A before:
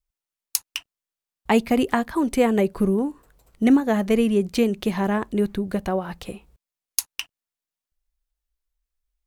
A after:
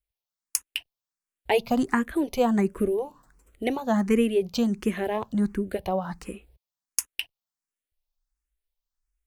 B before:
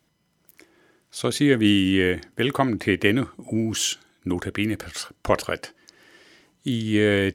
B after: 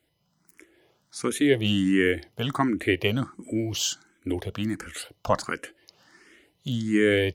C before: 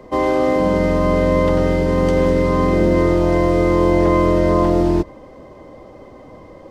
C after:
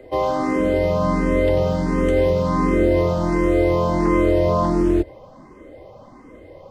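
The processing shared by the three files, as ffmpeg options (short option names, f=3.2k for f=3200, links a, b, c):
-filter_complex "[0:a]asplit=2[a][b];[b]afreqshift=1.4[c];[a][c]amix=inputs=2:normalize=1"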